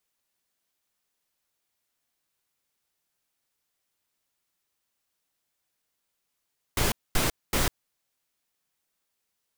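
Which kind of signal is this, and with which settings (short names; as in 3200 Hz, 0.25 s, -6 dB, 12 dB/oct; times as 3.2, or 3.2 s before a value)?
noise bursts pink, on 0.15 s, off 0.23 s, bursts 3, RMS -24 dBFS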